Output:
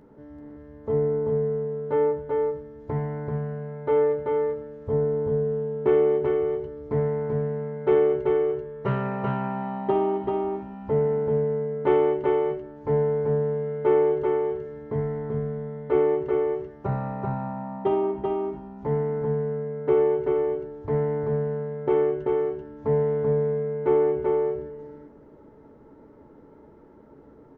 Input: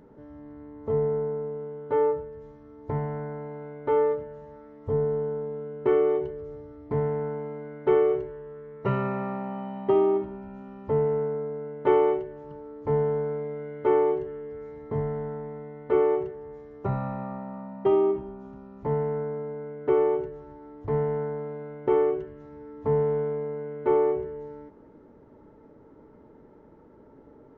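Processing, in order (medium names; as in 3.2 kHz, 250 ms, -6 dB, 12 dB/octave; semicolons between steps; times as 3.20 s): doubling 14 ms -11 dB; delay 386 ms -3 dB; loudspeaker Doppler distortion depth 0.11 ms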